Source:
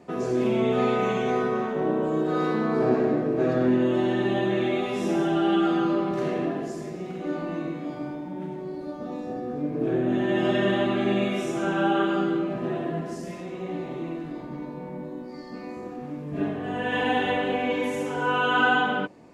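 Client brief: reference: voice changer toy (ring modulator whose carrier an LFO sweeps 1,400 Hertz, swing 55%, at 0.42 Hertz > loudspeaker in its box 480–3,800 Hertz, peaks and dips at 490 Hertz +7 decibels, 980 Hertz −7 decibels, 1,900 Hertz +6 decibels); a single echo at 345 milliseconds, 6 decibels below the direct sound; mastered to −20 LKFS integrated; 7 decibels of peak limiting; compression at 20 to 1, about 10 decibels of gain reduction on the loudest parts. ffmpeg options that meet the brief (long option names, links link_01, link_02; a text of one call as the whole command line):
ffmpeg -i in.wav -af "acompressor=threshold=-27dB:ratio=20,alimiter=level_in=2.5dB:limit=-24dB:level=0:latency=1,volume=-2.5dB,aecho=1:1:345:0.501,aeval=exprs='val(0)*sin(2*PI*1400*n/s+1400*0.55/0.42*sin(2*PI*0.42*n/s))':channel_layout=same,highpass=480,equalizer=frequency=490:width_type=q:width=4:gain=7,equalizer=frequency=980:width_type=q:width=4:gain=-7,equalizer=frequency=1900:width_type=q:width=4:gain=6,lowpass=frequency=3800:width=0.5412,lowpass=frequency=3800:width=1.3066,volume=13.5dB" out.wav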